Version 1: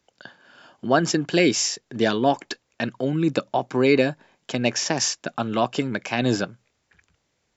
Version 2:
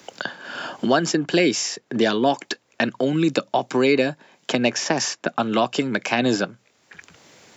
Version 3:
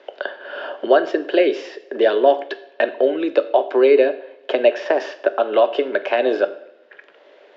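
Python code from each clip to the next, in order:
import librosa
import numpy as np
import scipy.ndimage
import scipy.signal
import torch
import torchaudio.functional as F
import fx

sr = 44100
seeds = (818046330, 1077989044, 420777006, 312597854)

y1 = scipy.signal.sosfilt(scipy.signal.butter(2, 160.0, 'highpass', fs=sr, output='sos'), x)
y1 = fx.band_squash(y1, sr, depth_pct=70)
y1 = y1 * 10.0 ** (2.0 / 20.0)
y2 = fx.cabinet(y1, sr, low_hz=380.0, low_slope=24, high_hz=3000.0, hz=(390.0, 580.0, 840.0, 1200.0, 2300.0), db=(6, 9, -4, -5, -7))
y2 = fx.rev_double_slope(y2, sr, seeds[0], early_s=0.61, late_s=1.6, knee_db=-16, drr_db=10.5)
y2 = y2 * 10.0 ** (2.0 / 20.0)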